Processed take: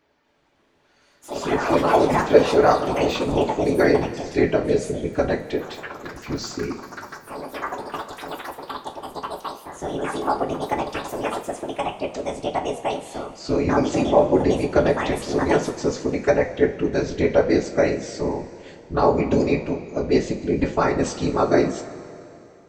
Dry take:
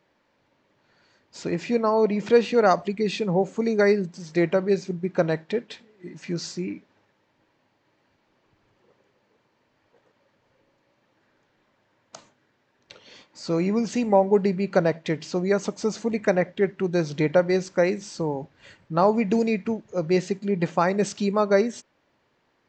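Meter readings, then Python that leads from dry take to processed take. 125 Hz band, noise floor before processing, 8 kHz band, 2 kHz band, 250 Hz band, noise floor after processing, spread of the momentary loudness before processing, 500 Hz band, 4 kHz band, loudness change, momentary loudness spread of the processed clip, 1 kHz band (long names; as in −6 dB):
+2.0 dB, −69 dBFS, +4.0 dB, +3.5 dB, +2.5 dB, −59 dBFS, 11 LU, +3.0 dB, +4.5 dB, +2.0 dB, 15 LU, +5.0 dB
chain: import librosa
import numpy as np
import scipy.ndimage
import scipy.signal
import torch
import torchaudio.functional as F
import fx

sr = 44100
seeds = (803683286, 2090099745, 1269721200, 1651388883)

y = fx.whisperise(x, sr, seeds[0])
y = fx.echo_pitch(y, sr, ms=279, semitones=6, count=3, db_per_echo=-6.0)
y = fx.rev_double_slope(y, sr, seeds[1], early_s=0.23, late_s=2.8, knee_db=-18, drr_db=3.0)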